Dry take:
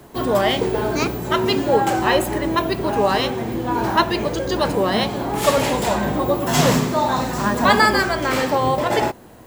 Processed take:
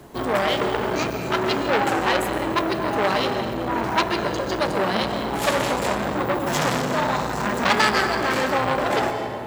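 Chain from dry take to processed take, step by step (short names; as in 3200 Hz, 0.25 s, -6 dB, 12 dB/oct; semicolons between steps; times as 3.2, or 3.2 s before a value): high shelf 12000 Hz -5.5 dB; on a send at -6.5 dB: reverb RT60 2.2 s, pre-delay 85 ms; on the sum: core saturation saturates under 2600 Hz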